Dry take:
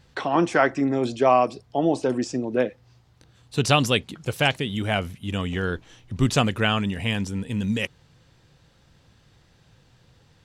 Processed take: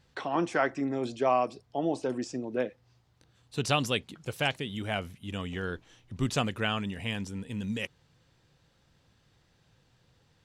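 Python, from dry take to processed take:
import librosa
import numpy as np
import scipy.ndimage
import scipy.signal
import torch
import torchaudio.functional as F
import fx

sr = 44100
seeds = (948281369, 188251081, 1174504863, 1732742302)

y = fx.low_shelf(x, sr, hz=150.0, db=-3.0)
y = y * librosa.db_to_amplitude(-7.5)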